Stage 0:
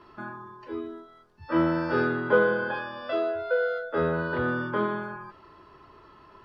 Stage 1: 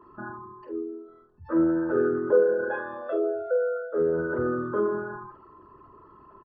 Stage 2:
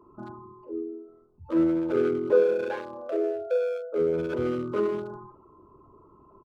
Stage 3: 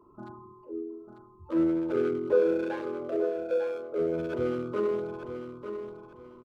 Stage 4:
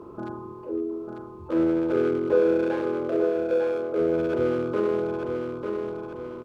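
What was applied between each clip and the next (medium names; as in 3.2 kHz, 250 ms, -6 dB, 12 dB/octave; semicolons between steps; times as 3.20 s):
resonances exaggerated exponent 2; doubling 46 ms -8 dB
local Wiener filter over 25 samples
feedback delay 896 ms, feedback 27%, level -8.5 dB; trim -3 dB
spectral levelling over time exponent 0.6; trim +1.5 dB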